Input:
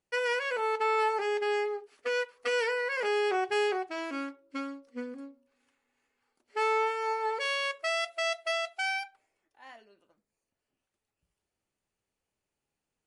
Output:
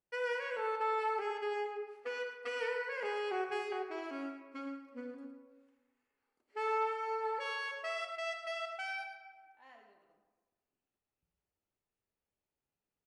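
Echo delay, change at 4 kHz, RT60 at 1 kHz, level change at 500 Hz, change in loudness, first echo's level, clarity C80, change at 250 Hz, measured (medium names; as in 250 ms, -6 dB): 109 ms, -11.0 dB, 1.3 s, -7.5 dB, -7.5 dB, -11.5 dB, 5.5 dB, -5.5 dB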